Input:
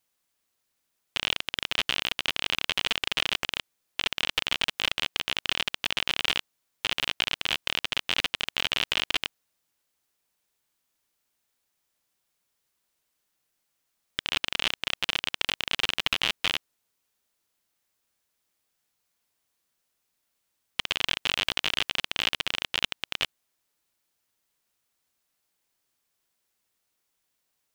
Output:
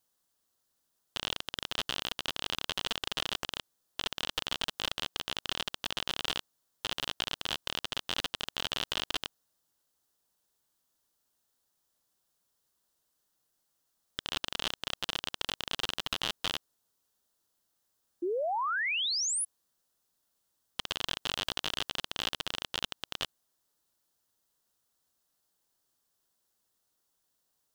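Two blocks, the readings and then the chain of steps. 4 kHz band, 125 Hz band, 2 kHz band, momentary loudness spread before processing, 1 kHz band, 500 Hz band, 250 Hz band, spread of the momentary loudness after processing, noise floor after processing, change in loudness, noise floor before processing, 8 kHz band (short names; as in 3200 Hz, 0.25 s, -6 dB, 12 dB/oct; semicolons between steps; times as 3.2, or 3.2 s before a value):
-6.0 dB, -3.0 dB, -8.0 dB, 5 LU, -1.0 dB, +1.5 dB, -2.0 dB, 7 LU, -80 dBFS, -6.0 dB, -78 dBFS, +2.0 dB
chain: bell 2300 Hz -11.5 dB 0.6 oct; limiter -14 dBFS, peak gain reduction 6.5 dB; painted sound rise, 18.22–19.45, 330–11000 Hz -31 dBFS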